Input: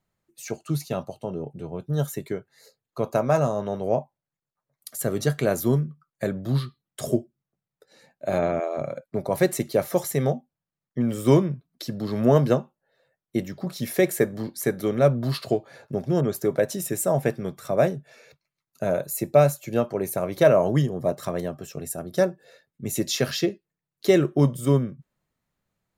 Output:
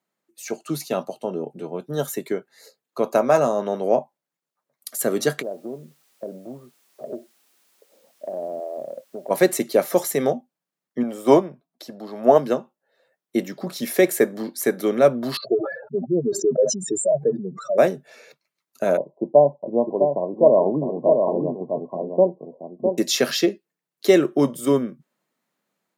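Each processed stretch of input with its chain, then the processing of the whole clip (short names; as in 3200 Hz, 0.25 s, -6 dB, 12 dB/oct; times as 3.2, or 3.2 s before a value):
5.41–9.29 ladder low-pass 750 Hz, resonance 50% + compressor 3:1, threshold -33 dBFS + added noise white -68 dBFS
11.03–12.38 bell 740 Hz +11.5 dB 0.95 oct + upward expander, over -23 dBFS
15.37–17.78 spectral contrast raised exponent 3.1 + elliptic low-pass 8000 Hz + sustainer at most 85 dB/s
18.97–22.98 brick-wall FIR low-pass 1100 Hz + echo 0.656 s -6 dB
whole clip: HPF 210 Hz 24 dB/oct; AGC gain up to 5 dB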